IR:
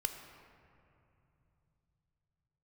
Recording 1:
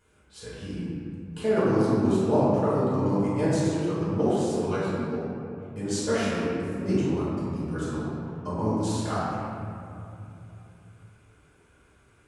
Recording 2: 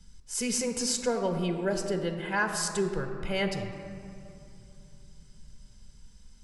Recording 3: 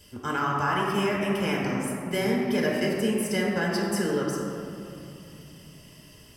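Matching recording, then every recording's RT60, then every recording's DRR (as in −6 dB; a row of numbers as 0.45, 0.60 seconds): 2; 2.8, 2.9, 2.8 seconds; −11.5, 5.0, −3.5 decibels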